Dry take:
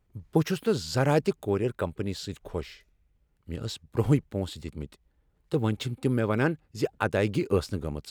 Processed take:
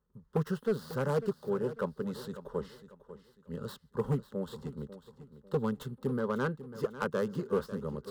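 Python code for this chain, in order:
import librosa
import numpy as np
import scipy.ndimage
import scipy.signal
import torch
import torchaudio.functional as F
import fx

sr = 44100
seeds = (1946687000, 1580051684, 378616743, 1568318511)

p1 = fx.tracing_dist(x, sr, depth_ms=0.22)
p2 = scipy.signal.sosfilt(scipy.signal.butter(2, 43.0, 'highpass', fs=sr, output='sos'), p1)
p3 = fx.bass_treble(p2, sr, bass_db=-1, treble_db=-11)
p4 = fx.rider(p3, sr, range_db=4, speed_s=0.5)
p5 = p3 + F.gain(torch.from_numpy(p4), 0.5).numpy()
p6 = fx.fixed_phaser(p5, sr, hz=470.0, stages=8)
p7 = np.clip(10.0 ** (13.5 / 20.0) * p6, -1.0, 1.0) / 10.0 ** (13.5 / 20.0)
p8 = fx.echo_feedback(p7, sr, ms=546, feedback_pct=34, wet_db=-14)
y = F.gain(torch.from_numpy(p8), -8.5).numpy()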